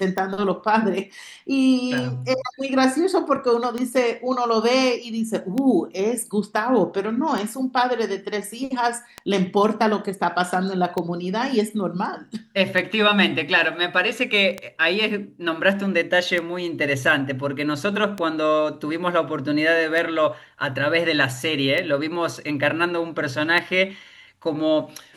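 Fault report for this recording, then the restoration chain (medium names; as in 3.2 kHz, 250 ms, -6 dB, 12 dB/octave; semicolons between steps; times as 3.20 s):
tick 33 1/3 rpm -12 dBFS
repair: de-click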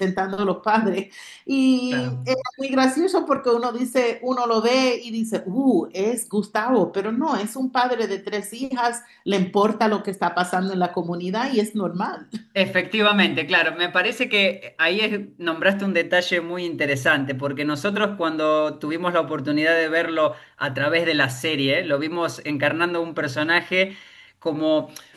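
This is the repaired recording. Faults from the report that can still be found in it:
nothing left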